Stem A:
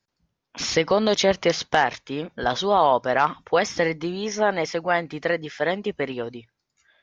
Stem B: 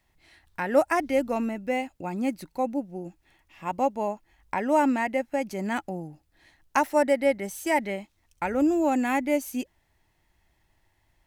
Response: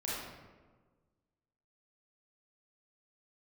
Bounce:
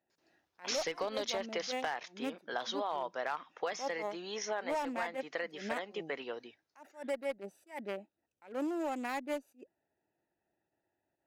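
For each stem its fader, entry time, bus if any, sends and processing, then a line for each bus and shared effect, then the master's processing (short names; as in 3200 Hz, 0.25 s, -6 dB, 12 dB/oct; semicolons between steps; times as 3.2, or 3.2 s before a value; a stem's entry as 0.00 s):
+2.5 dB, 0.10 s, no send, auto duck -10 dB, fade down 1.55 s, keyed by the second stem
+1.5 dB, 0.00 s, no send, Wiener smoothing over 41 samples; attack slew limiter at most 200 dB/s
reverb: off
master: Bessel high-pass 500 Hz, order 2; one-sided clip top -19.5 dBFS; compressor 5:1, threshold -33 dBFS, peak gain reduction 11.5 dB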